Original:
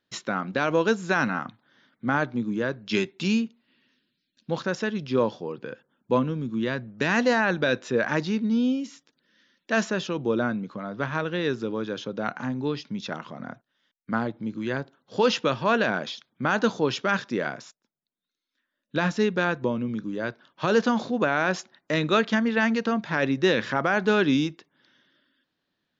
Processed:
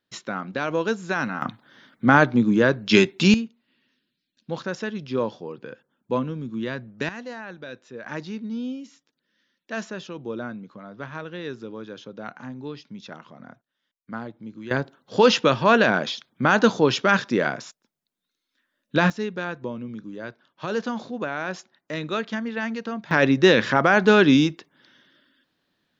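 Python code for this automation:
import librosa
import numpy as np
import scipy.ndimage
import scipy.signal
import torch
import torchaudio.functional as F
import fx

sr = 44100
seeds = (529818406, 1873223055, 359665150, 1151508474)

y = fx.gain(x, sr, db=fx.steps((0.0, -2.0), (1.42, 9.0), (3.34, -2.0), (7.09, -14.5), (8.06, -7.0), (14.71, 5.5), (19.1, -5.5), (23.11, 6.0)))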